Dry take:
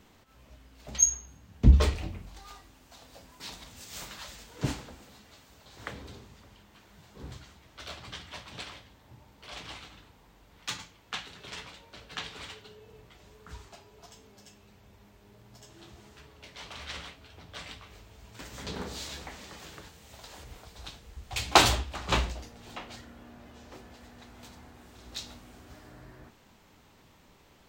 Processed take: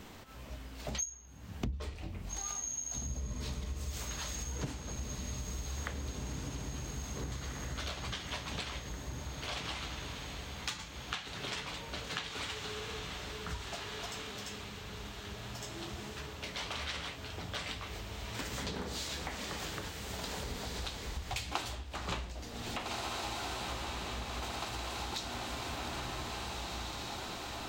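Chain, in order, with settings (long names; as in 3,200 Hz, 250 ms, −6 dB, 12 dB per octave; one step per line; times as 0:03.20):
feedback delay with all-pass diffusion 1,766 ms, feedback 51%, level −10 dB
downward compressor 10 to 1, threshold −44 dBFS, peak gain reduction 31.5 dB
level +8.5 dB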